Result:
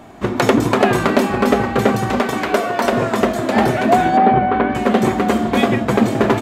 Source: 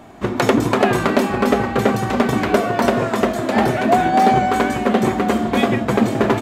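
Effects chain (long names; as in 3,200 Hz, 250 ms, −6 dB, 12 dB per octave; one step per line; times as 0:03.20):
0:02.19–0:02.92: parametric band 100 Hz −11.5 dB 2.6 octaves
0:04.17–0:04.75: Gaussian smoothing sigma 3.1 samples
level +1.5 dB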